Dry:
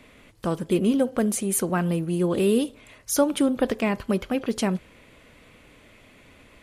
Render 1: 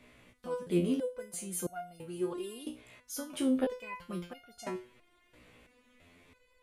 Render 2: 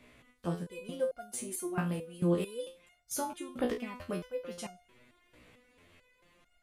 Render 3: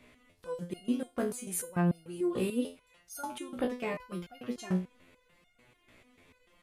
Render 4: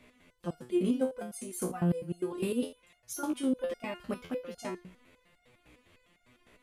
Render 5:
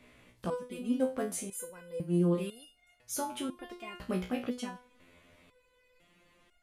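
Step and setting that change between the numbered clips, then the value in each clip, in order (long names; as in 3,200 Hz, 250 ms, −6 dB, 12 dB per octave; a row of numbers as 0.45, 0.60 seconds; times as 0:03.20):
step-sequenced resonator, speed: 3, 4.5, 6.8, 9.9, 2 Hertz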